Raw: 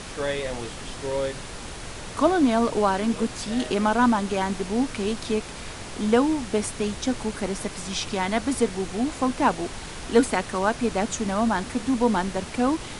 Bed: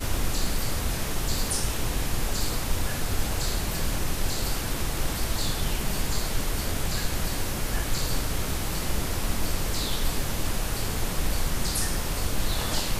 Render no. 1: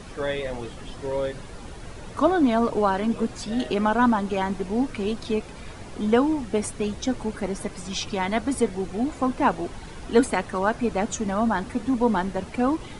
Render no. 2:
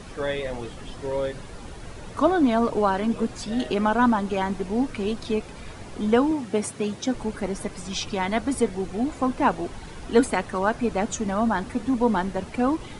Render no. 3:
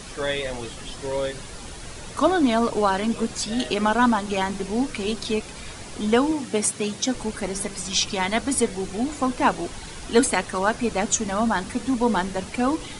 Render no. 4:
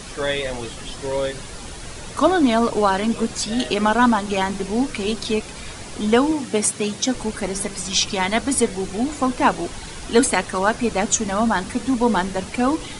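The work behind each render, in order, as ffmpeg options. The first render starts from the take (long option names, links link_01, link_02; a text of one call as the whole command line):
ffmpeg -i in.wav -af "afftdn=noise_reduction=10:noise_floor=-37" out.wav
ffmpeg -i in.wav -filter_complex "[0:a]asettb=1/sr,asplit=3[link_01][link_02][link_03];[link_01]atrim=end=6.314[link_04];[link_02]atrim=start=6.31:end=7.15,asetpts=PTS-STARTPTS,afade=type=in:duration=0.004:curve=qsin,afade=type=out:start_time=0.836:duration=0.004:curve=qsin,highpass=frequency=100:width=0.5412,highpass=frequency=100:width=1.3066[link_05];[link_03]atrim=start=7.146[link_06];[link_04][link_05]acrossfade=duration=0.004:curve1=hsin:curve2=qsin[link_07];[link_07][link_06]acrossfade=duration=0.004:curve1=qsin:curve2=hsin" out.wav
ffmpeg -i in.wav -af "highshelf=frequency=2700:gain=11.5,bandreject=frequency=99.01:width_type=h:width=4,bandreject=frequency=198.02:width_type=h:width=4,bandreject=frequency=297.03:width_type=h:width=4,bandreject=frequency=396.04:width_type=h:width=4,bandreject=frequency=495.05:width_type=h:width=4" out.wav
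ffmpeg -i in.wav -af "volume=3dB,alimiter=limit=-3dB:level=0:latency=1" out.wav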